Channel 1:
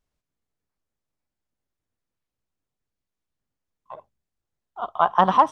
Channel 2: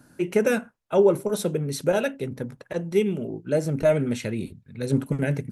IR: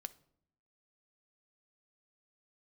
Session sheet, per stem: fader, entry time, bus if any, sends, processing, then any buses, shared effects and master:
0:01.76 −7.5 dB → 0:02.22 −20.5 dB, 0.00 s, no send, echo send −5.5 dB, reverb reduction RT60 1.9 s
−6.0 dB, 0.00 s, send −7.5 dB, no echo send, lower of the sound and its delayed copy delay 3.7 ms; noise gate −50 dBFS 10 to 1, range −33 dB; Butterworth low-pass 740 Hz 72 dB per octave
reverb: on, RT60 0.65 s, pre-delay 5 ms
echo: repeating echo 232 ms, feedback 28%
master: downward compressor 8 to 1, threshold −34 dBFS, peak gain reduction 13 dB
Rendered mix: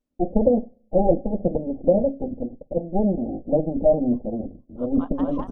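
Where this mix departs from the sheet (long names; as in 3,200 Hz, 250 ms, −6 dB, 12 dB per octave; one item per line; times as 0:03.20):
stem 2 −6.0 dB → +4.0 dB
master: missing downward compressor 8 to 1, threshold −34 dBFS, peak gain reduction 13 dB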